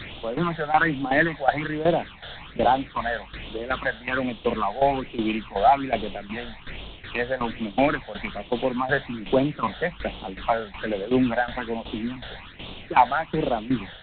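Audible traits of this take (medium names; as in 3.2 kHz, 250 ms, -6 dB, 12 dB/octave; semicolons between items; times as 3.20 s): a quantiser's noise floor 6-bit, dither triangular; tremolo saw down 2.7 Hz, depth 80%; phasing stages 8, 1.2 Hz, lowest notch 310–1800 Hz; G.726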